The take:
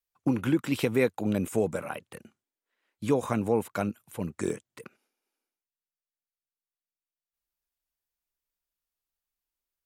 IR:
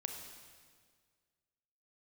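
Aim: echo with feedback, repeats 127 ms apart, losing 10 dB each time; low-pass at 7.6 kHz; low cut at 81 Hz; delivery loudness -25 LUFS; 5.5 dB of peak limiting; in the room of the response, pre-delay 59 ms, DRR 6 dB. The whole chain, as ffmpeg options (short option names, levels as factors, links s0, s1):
-filter_complex "[0:a]highpass=81,lowpass=7600,alimiter=limit=0.141:level=0:latency=1,aecho=1:1:127|254|381|508:0.316|0.101|0.0324|0.0104,asplit=2[s0][s1];[1:a]atrim=start_sample=2205,adelay=59[s2];[s1][s2]afir=irnorm=-1:irlink=0,volume=0.531[s3];[s0][s3]amix=inputs=2:normalize=0,volume=1.68"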